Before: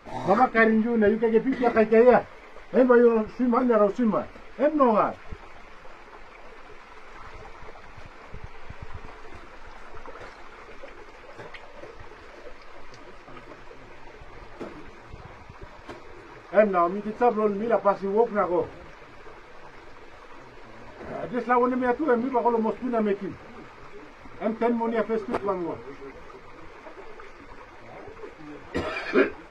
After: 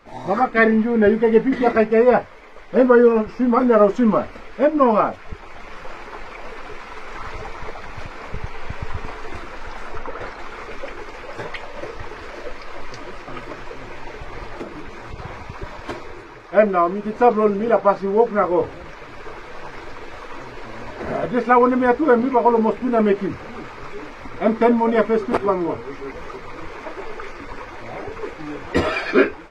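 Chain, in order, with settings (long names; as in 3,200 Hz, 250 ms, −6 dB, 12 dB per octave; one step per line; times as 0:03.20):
automatic gain control gain up to 12 dB
0:09.98–0:10.39: high-shelf EQ 4,200 Hz −7.5 dB
0:14.54–0:15.19: downward compressor 6 to 1, threshold −27 dBFS, peak gain reduction 8 dB
level −1 dB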